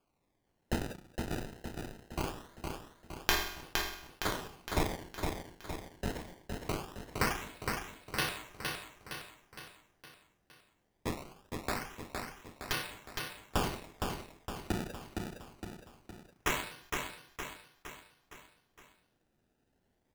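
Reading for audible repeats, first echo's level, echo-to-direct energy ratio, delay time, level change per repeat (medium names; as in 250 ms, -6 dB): 5, -4.5 dB, -3.0 dB, 463 ms, -5.5 dB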